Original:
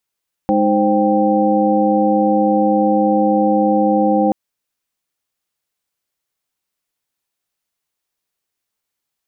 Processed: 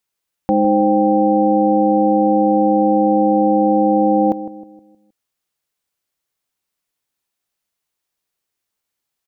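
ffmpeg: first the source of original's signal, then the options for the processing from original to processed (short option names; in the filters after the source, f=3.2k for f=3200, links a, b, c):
-f lavfi -i "aevalsrc='0.141*(sin(2*PI*207.65*t)+sin(2*PI*311.13*t)+sin(2*PI*523.25*t)+sin(2*PI*783.99*t))':d=3.83:s=44100"
-filter_complex "[0:a]asplit=2[a][b];[b]adelay=157,lowpass=f=860:p=1,volume=-12dB,asplit=2[c][d];[d]adelay=157,lowpass=f=860:p=1,volume=0.46,asplit=2[e][f];[f]adelay=157,lowpass=f=860:p=1,volume=0.46,asplit=2[g][h];[h]adelay=157,lowpass=f=860:p=1,volume=0.46,asplit=2[i][j];[j]adelay=157,lowpass=f=860:p=1,volume=0.46[k];[a][c][e][g][i][k]amix=inputs=6:normalize=0"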